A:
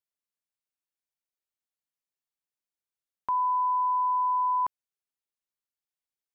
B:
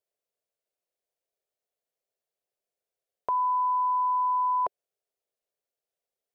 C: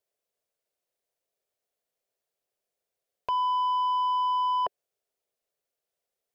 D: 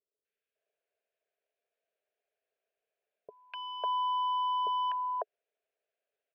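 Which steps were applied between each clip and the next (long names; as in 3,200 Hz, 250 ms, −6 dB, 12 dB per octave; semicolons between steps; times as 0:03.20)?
flat-topped bell 530 Hz +14.5 dB 1.1 octaves
soft clipping −26 dBFS, distortion −18 dB; level +3 dB
loudspeaker in its box 290–3,500 Hz, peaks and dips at 430 Hz +10 dB, 650 Hz +9 dB, 1,000 Hz −3 dB, 1,600 Hz +10 dB, 2,500 Hz +7 dB; three-band delay without the direct sound lows, highs, mids 250/550 ms, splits 420/1,300 Hz; level −3.5 dB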